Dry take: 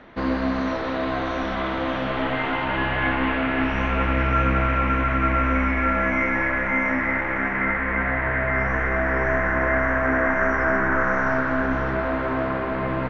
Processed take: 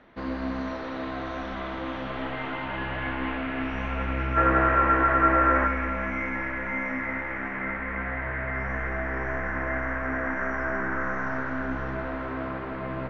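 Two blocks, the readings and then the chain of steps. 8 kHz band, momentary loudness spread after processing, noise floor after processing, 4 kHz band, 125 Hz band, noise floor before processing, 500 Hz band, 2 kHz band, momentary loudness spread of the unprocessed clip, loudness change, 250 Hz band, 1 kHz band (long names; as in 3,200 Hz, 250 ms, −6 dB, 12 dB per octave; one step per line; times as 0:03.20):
can't be measured, 13 LU, −34 dBFS, −8.0 dB, −6.5 dB, −26 dBFS, −6.5 dB, −6.5 dB, 5 LU, −5.0 dB, −6.0 dB, −3.0 dB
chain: gain on a spectral selection 0:04.37–0:05.67, 290–2,000 Hz +11 dB
echo with a time of its own for lows and highs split 320 Hz, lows 105 ms, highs 213 ms, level −10 dB
level −8.5 dB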